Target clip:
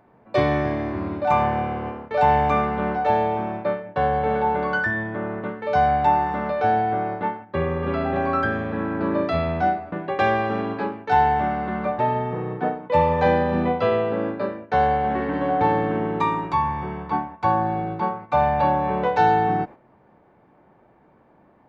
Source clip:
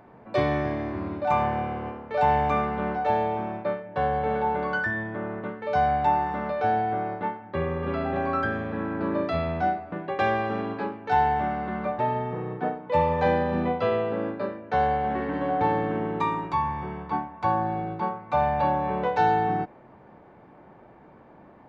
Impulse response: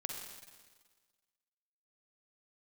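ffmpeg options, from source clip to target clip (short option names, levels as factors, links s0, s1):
-af "agate=range=0.355:threshold=0.01:ratio=16:detection=peak,volume=1.58"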